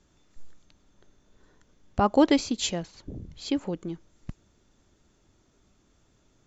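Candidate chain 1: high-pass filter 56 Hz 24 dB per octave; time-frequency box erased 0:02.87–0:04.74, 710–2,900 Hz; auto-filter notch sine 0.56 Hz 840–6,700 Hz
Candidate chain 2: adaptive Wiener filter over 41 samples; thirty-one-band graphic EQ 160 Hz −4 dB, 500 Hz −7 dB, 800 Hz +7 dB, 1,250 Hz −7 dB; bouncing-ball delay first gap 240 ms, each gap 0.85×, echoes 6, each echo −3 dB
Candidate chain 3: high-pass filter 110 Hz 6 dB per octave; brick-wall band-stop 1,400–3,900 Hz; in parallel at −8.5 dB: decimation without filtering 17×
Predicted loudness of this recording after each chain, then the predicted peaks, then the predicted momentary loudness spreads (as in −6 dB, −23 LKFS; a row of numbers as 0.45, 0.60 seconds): −27.0, −25.5, −25.0 LKFS; −8.5, −8.0, −6.5 dBFS; 23, 19, 20 LU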